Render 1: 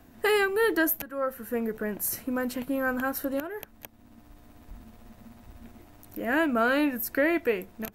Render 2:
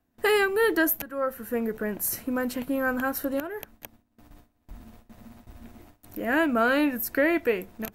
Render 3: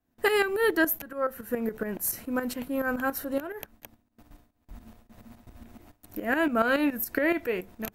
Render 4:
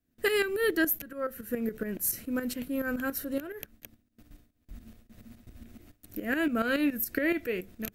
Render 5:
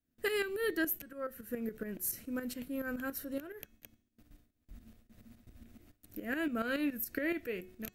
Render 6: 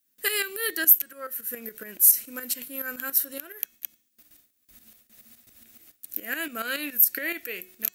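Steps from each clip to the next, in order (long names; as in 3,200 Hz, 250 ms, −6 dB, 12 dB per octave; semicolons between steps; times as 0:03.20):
noise gate with hold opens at −41 dBFS; level +1.5 dB
shaped tremolo saw up 7.1 Hz, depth 70%; level +1.5 dB
parametric band 890 Hz −14.5 dB 0.93 octaves
hum removal 366.1 Hz, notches 23; level −6.5 dB
spectral tilt +4.5 dB per octave; level +4 dB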